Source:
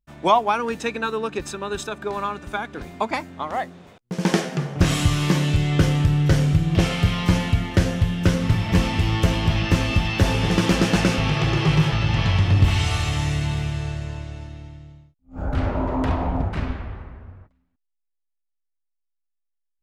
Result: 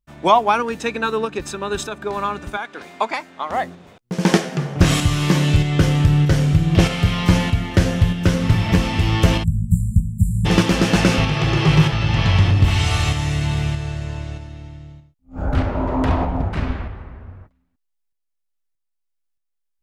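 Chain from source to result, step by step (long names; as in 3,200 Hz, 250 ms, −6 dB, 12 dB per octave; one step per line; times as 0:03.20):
0:09.43–0:10.45: time-frequency box erased 230–7,100 Hz
shaped tremolo saw up 1.6 Hz, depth 40%
0:02.57–0:03.50: meter weighting curve A
level +5 dB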